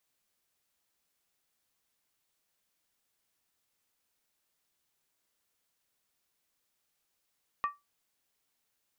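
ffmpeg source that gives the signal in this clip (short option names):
-f lavfi -i "aevalsrc='0.0631*pow(10,-3*t/0.2)*sin(2*PI*1160*t)+0.02*pow(10,-3*t/0.158)*sin(2*PI*1849*t)+0.00631*pow(10,-3*t/0.137)*sin(2*PI*2477.8*t)+0.002*pow(10,-3*t/0.132)*sin(2*PI*2663.4*t)+0.000631*pow(10,-3*t/0.123)*sin(2*PI*3077.5*t)':d=0.63:s=44100"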